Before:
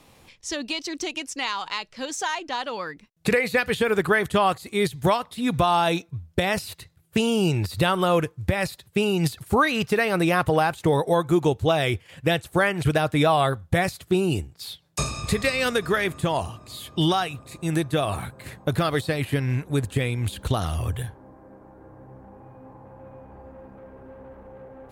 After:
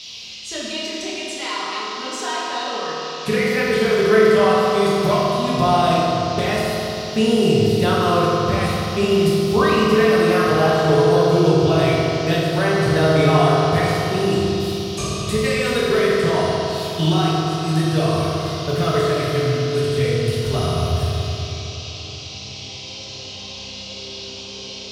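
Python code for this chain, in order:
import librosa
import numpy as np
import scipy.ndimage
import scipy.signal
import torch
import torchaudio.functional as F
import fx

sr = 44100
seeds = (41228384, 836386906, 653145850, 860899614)

y = fx.wow_flutter(x, sr, seeds[0], rate_hz=2.1, depth_cents=31.0)
y = fx.dmg_noise_band(y, sr, seeds[1], low_hz=2500.0, high_hz=5600.0, level_db=-36.0)
y = fx.rev_fdn(y, sr, rt60_s=3.6, lf_ratio=1.0, hf_ratio=0.4, size_ms=14.0, drr_db=-8.5)
y = F.gain(torch.from_numpy(y), -5.0).numpy()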